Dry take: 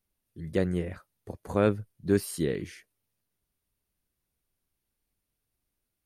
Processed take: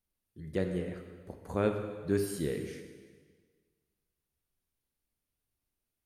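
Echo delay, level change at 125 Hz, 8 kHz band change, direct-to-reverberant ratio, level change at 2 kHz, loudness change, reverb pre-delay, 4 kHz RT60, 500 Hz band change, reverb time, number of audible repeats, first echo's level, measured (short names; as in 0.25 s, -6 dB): none, -5.0 dB, -4.5 dB, 5.0 dB, -4.5 dB, -4.5 dB, 7 ms, 1.5 s, -4.0 dB, 1.6 s, none, none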